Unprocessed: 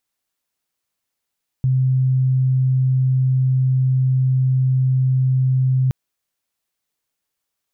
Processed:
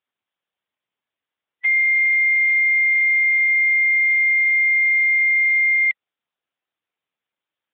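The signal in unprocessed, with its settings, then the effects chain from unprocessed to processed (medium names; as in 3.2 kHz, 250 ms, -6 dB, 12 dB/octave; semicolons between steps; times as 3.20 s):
tone sine 130 Hz -13.5 dBFS 4.27 s
split-band scrambler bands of 2 kHz; bass shelf 97 Hz -8 dB; Speex 11 kbps 8 kHz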